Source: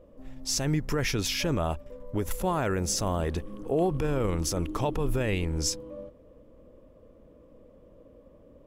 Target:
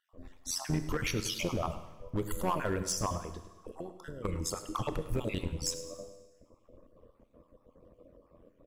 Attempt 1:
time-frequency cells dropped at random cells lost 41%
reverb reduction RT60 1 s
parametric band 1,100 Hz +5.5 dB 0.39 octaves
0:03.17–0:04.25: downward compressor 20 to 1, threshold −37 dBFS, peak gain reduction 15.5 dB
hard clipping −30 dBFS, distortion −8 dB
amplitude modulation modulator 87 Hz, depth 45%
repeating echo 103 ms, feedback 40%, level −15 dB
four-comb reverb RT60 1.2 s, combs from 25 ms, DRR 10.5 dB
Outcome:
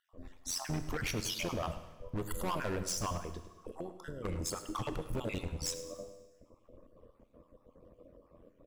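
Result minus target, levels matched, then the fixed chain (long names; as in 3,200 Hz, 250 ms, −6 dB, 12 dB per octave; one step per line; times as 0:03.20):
hard clipping: distortion +9 dB
time-frequency cells dropped at random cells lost 41%
reverb reduction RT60 1 s
parametric band 1,100 Hz +5.5 dB 0.39 octaves
0:03.17–0:04.25: downward compressor 20 to 1, threshold −37 dBFS, peak gain reduction 15.5 dB
hard clipping −23 dBFS, distortion −17 dB
amplitude modulation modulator 87 Hz, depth 45%
repeating echo 103 ms, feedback 40%, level −15 dB
four-comb reverb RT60 1.2 s, combs from 25 ms, DRR 10.5 dB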